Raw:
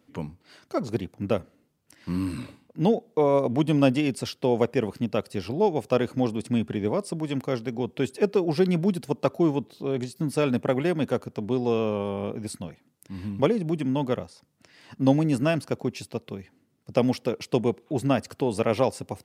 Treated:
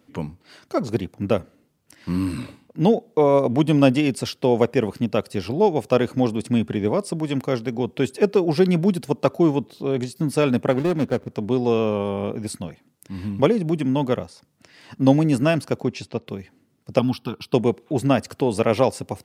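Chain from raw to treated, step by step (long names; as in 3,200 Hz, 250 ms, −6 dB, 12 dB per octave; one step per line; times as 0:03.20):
0:10.71–0:11.31: running median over 41 samples
0:15.83–0:16.26: low-pass filter 8,400 Hz → 4,000 Hz 12 dB per octave
0:16.99–0:17.54: phaser with its sweep stopped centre 2,000 Hz, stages 6
level +4.5 dB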